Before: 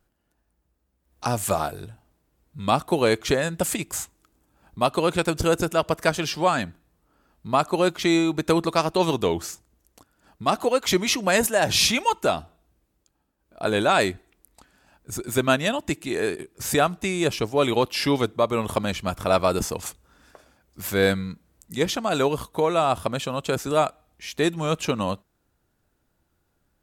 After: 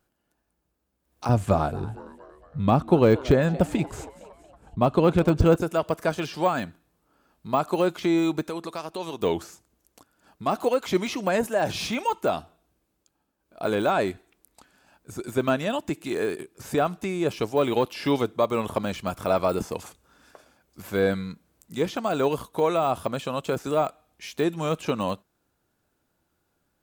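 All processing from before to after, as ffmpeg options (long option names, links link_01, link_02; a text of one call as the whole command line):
ffmpeg -i in.wav -filter_complex "[0:a]asettb=1/sr,asplit=3[link_01][link_02][link_03];[link_01]atrim=end=1.294[link_04];[link_02]atrim=start=1.29:end=5.56,asetpts=PTS-STARTPTS,afade=type=in:duration=0.004:curve=qsin,afade=type=out:start_time=4.266:duration=0.004:curve=qsin,aemphasis=mode=reproduction:type=riaa,asplit=5[link_05][link_06][link_07][link_08][link_09];[link_06]adelay=231,afreqshift=130,volume=-20dB[link_10];[link_07]adelay=462,afreqshift=260,volume=-25.8dB[link_11];[link_08]adelay=693,afreqshift=390,volume=-31.7dB[link_12];[link_09]adelay=924,afreqshift=520,volume=-37.5dB[link_13];[link_05][link_10][link_11][link_12][link_13]amix=inputs=5:normalize=0,atrim=end_sample=188307[link_14];[link_03]atrim=start=5.556[link_15];[link_04][link_14]acrossfade=duration=0.004:curve1=hsin:curve2=qsin[link_16];[link_16][link_15]acrossfade=duration=0.004:curve1=qsin:curve2=hsin,asettb=1/sr,asplit=3[link_17][link_18][link_19];[link_17]atrim=end=8.424[link_20];[link_18]atrim=start=8.42:end=9.22,asetpts=PTS-STARTPTS,afade=type=in:duration=0.004:curve=qsin,afade=type=out:start_time=0.796:duration=0.004:curve=qsin,equalizer=frequency=80:width_type=o:width=2.4:gain=-5,acompressor=threshold=-36dB:ratio=2:attack=3.2:release=140:knee=1:detection=peak[link_21];[link_19]atrim=start=9.216[link_22];[link_20][link_21]acrossfade=duration=0.004:curve1=hsin:curve2=qsin[link_23];[link_23][link_22]acrossfade=duration=0.004:curve1=qsin:curve2=hsin,deesser=0.9,lowshelf=frequency=88:gain=-11.5,bandreject=frequency=1900:width=21" out.wav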